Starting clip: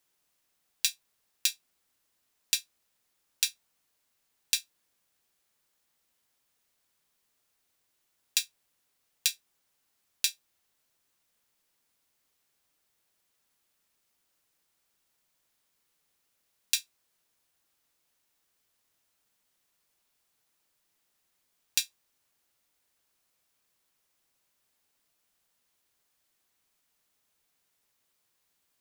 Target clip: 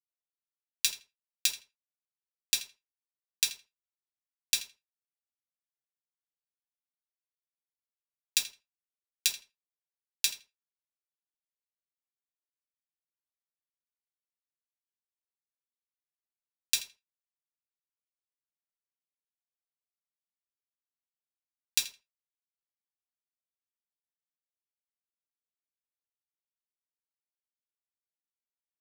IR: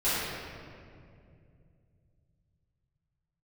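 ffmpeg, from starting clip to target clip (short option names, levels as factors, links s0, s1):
-filter_complex "[0:a]acrusher=bits=6:mix=0:aa=0.000001,asplit=2[s0][s1];[s1]adelay=82,lowpass=f=4400:p=1,volume=0.211,asplit=2[s2][s3];[s3]adelay=82,lowpass=f=4400:p=1,volume=0.16[s4];[s0][s2][s4]amix=inputs=3:normalize=0,asplit=2[s5][s6];[1:a]atrim=start_sample=2205,atrim=end_sample=3528,adelay=8[s7];[s6][s7]afir=irnorm=-1:irlink=0,volume=0.0596[s8];[s5][s8]amix=inputs=2:normalize=0"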